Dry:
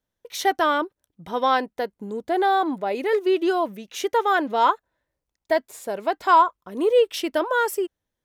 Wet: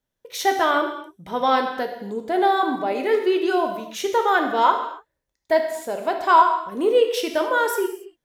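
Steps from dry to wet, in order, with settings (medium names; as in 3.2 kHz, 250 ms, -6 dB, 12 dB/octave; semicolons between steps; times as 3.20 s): gated-style reverb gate 310 ms falling, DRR 3.5 dB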